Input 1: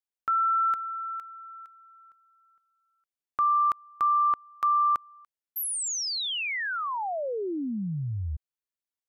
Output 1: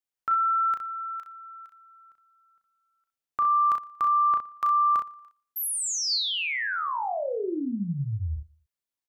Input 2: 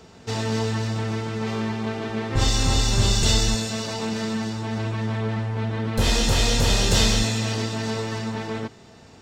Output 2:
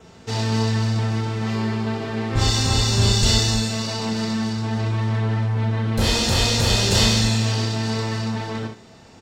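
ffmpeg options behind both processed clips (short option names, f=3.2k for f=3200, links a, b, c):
-filter_complex "[0:a]asplit=2[a][b];[b]aecho=0:1:117|234:0.0668|0.0187[c];[a][c]amix=inputs=2:normalize=0,adynamicequalizer=threshold=0.00501:dfrequency=4500:dqfactor=5.7:tfrequency=4500:tqfactor=5.7:attack=5:release=100:ratio=0.375:range=2.5:mode=boostabove:tftype=bell,asplit=2[d][e];[e]aecho=0:1:35|63:0.501|0.398[f];[d][f]amix=inputs=2:normalize=0"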